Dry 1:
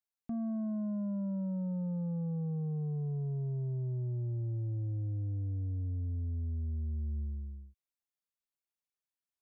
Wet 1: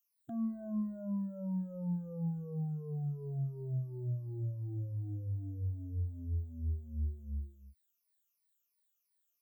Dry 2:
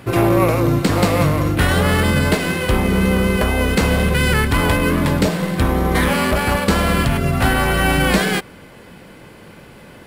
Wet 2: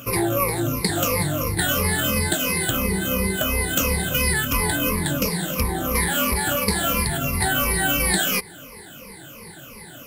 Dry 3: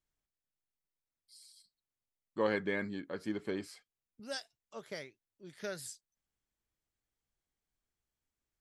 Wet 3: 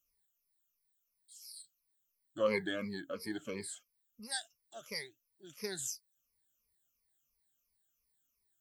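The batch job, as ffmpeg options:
-af "afftfilt=real='re*pow(10,22/40*sin(2*PI*(0.87*log(max(b,1)*sr/1024/100)/log(2)-(-2.9)*(pts-256)/sr)))':imag='im*pow(10,22/40*sin(2*PI*(0.87*log(max(b,1)*sr/1024/100)/log(2)-(-2.9)*(pts-256)/sr)))':win_size=1024:overlap=0.75,acompressor=threshold=-18dB:ratio=2,aemphasis=mode=production:type=75kf,volume=-7dB"

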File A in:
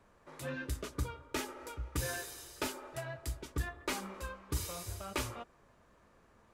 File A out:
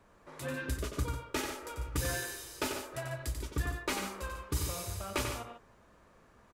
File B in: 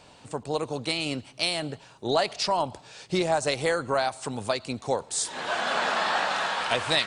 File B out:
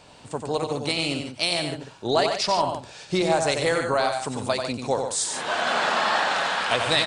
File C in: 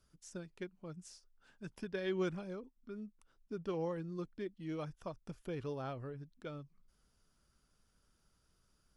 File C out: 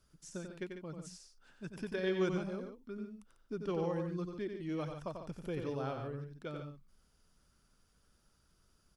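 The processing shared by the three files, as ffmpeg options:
-af "aecho=1:1:91|146:0.501|0.335,volume=2dB"

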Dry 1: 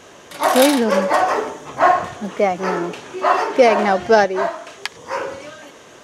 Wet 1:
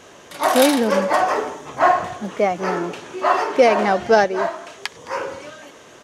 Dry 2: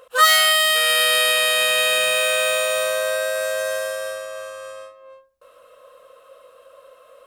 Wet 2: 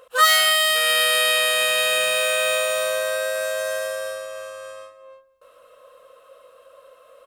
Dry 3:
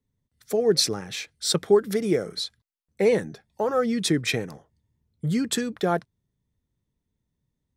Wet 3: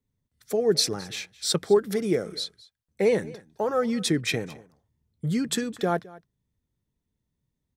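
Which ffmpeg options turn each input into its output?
-af "aecho=1:1:214:0.0891,volume=-1.5dB"

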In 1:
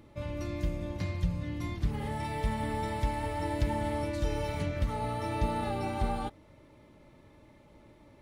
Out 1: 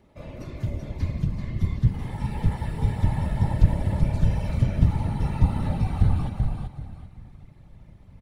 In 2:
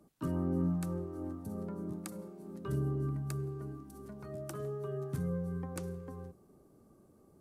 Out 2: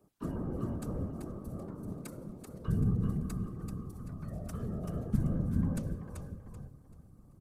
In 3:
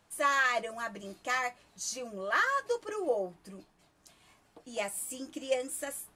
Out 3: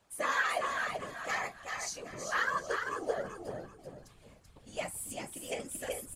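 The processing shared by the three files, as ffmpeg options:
-af "aecho=1:1:385|770|1155|1540:0.562|0.163|0.0473|0.0137,asubboost=boost=11:cutoff=100,afftfilt=real='hypot(re,im)*cos(2*PI*random(0))':imag='hypot(re,im)*sin(2*PI*random(1))':win_size=512:overlap=0.75,volume=3dB"

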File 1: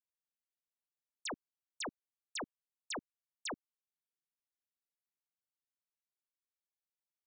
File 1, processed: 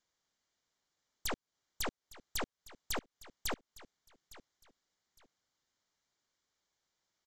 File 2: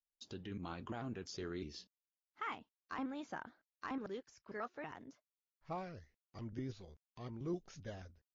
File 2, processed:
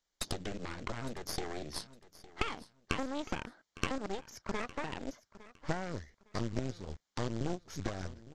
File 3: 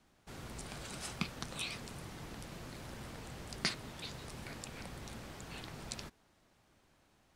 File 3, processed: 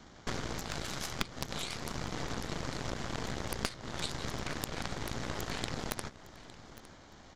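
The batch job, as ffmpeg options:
-af "bandreject=f=2.6k:w=5.1,acompressor=threshold=-52dB:ratio=20,aresample=16000,acrusher=bits=5:mode=log:mix=0:aa=0.000001,aresample=44100,aeval=exprs='0.0335*(cos(1*acos(clip(val(0)/0.0335,-1,1)))-cos(1*PI/2))+0.015*(cos(4*acos(clip(val(0)/0.0335,-1,1)))-cos(4*PI/2))+0.0106*(cos(8*acos(clip(val(0)/0.0335,-1,1)))-cos(8*PI/2))':c=same,aecho=1:1:859|1718:0.126|0.0327,volume=15dB"

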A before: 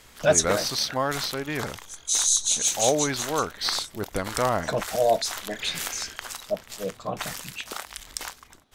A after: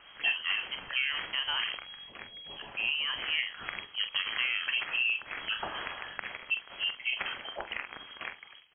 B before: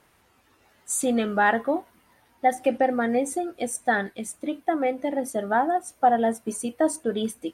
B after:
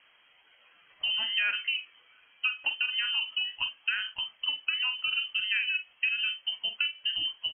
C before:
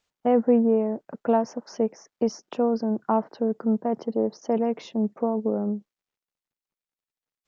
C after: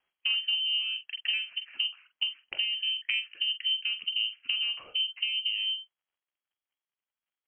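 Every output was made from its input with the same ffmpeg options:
-filter_complex "[0:a]acompressor=threshold=-27dB:ratio=6,asplit=2[a][b];[b]adelay=45,volume=-10dB[c];[a][c]amix=inputs=2:normalize=0,lowpass=f=2.8k:t=q:w=0.5098,lowpass=f=2.8k:t=q:w=0.6013,lowpass=f=2.8k:t=q:w=0.9,lowpass=f=2.8k:t=q:w=2.563,afreqshift=-3300"

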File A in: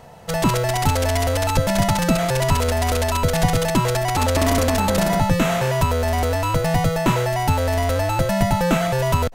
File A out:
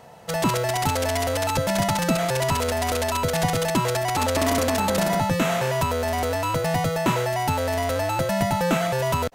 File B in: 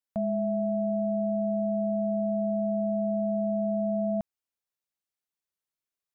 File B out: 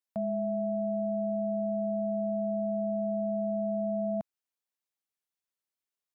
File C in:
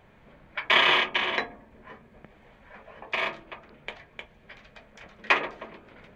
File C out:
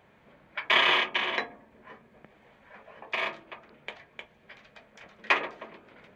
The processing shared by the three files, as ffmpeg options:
-af "highpass=f=160:p=1,volume=-2dB"

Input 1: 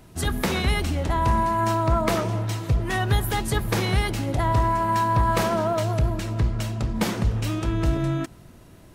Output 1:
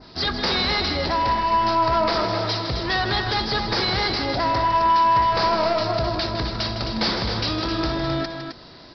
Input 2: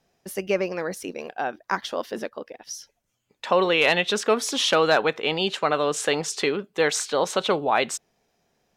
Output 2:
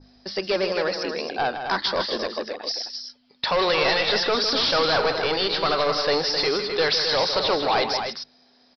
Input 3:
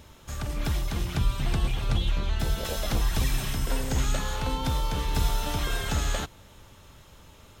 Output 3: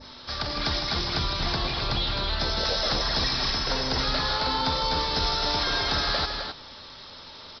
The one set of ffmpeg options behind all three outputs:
-filter_complex "[0:a]aeval=exprs='val(0)+0.00794*(sin(2*PI*50*n/s)+sin(2*PI*2*50*n/s)/2+sin(2*PI*3*50*n/s)/3+sin(2*PI*4*50*n/s)/4+sin(2*PI*5*50*n/s)/5)':c=same,asplit=2[a][b];[b]highpass=f=720:p=1,volume=15dB,asoftclip=type=tanh:threshold=-6.5dB[c];[a][c]amix=inputs=2:normalize=0,lowpass=f=3.3k:p=1,volume=-6dB,aexciter=amount=9.8:drive=3.7:freq=4.1k,aresample=11025,asoftclip=type=tanh:threshold=-17.5dB,aresample=44100,bandreject=f=50:t=h:w=6,bandreject=f=100:t=h:w=6,bandreject=f=150:t=h:w=6,bandreject=f=200:t=h:w=6,adynamicequalizer=threshold=0.0178:dfrequency=3200:dqfactor=1.3:tfrequency=3200:tqfactor=1.3:attack=5:release=100:ratio=0.375:range=2.5:mode=cutabove:tftype=bell,asplit=2[d][e];[e]aecho=0:1:157.4|262.4:0.355|0.447[f];[d][f]amix=inputs=2:normalize=0"

